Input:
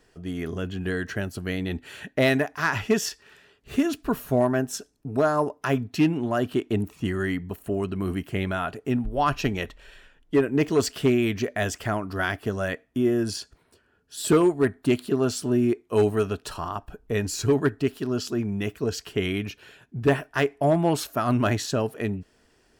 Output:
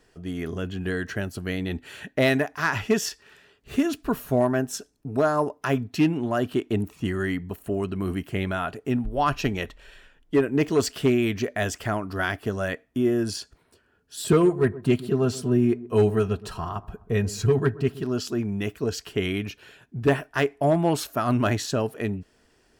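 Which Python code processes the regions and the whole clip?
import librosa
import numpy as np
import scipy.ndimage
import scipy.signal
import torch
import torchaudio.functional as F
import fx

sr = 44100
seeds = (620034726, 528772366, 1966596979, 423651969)

y = fx.chain(x, sr, fx.bass_treble(bass_db=5, treble_db=-3),
    fx.notch_comb(f0_hz=290.0),
    fx.echo_wet_lowpass(ms=128, feedback_pct=35, hz=1100.0, wet_db=-17), at=(14.24, 18.04))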